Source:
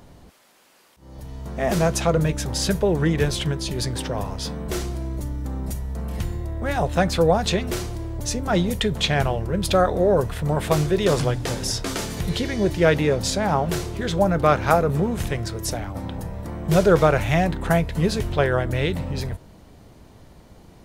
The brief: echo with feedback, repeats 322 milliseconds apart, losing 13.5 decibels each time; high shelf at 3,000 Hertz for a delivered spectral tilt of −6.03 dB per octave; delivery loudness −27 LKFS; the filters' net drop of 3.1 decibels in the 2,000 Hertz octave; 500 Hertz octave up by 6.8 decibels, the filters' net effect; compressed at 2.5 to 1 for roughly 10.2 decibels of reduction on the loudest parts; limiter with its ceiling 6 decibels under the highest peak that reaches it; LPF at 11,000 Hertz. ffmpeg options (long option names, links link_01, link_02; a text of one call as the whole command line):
ffmpeg -i in.wav -af "lowpass=11000,equalizer=frequency=500:width_type=o:gain=8.5,equalizer=frequency=2000:width_type=o:gain=-3.5,highshelf=frequency=3000:gain=-3.5,acompressor=threshold=-22dB:ratio=2.5,alimiter=limit=-14.5dB:level=0:latency=1,aecho=1:1:322|644:0.211|0.0444,volume=-1dB" out.wav